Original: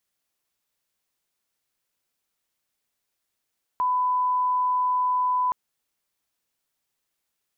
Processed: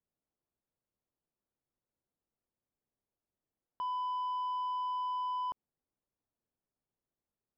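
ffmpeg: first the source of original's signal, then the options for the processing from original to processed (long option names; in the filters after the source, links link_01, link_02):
-f lavfi -i "sine=frequency=1000:duration=1.72:sample_rate=44100,volume=-1.94dB"
-af "alimiter=level_in=7dB:limit=-24dB:level=0:latency=1,volume=-7dB,adynamicsmooth=sensitivity=3.5:basefreq=690"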